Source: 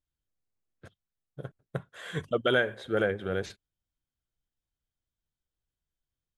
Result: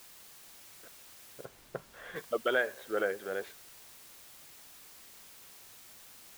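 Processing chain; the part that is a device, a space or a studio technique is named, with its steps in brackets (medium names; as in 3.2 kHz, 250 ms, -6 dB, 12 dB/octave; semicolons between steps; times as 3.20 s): wax cylinder (band-pass 400–2600 Hz; wow and flutter; white noise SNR 14 dB); 1.45–2.16 s: tilt EQ -2 dB/octave; trim -2.5 dB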